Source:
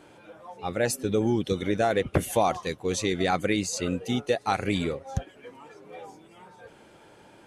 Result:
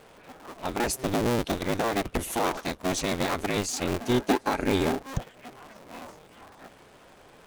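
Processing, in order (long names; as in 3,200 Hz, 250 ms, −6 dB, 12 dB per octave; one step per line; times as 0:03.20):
sub-harmonics by changed cycles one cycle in 2, inverted
brickwall limiter −16 dBFS, peak gain reduction 6.5 dB
0:03.99–0:04.99: hollow resonant body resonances 270/400/850/1,600 Hz, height 8 dB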